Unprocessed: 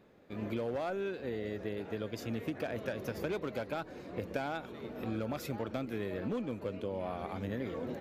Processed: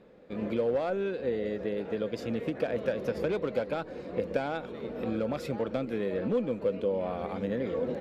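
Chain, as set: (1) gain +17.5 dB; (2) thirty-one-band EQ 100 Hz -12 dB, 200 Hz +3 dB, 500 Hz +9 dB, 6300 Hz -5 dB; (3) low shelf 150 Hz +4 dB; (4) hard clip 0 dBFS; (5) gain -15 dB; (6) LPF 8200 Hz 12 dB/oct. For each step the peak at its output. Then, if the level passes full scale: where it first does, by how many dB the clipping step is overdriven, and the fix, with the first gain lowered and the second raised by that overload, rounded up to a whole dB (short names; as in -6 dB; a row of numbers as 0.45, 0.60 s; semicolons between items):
-5.5, -2.0, -1.5, -1.5, -16.5, -16.5 dBFS; no overload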